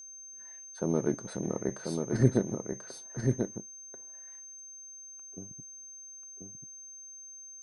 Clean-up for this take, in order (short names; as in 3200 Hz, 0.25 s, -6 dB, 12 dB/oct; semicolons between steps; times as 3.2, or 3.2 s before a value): notch 6300 Hz, Q 30; inverse comb 1.038 s -4.5 dB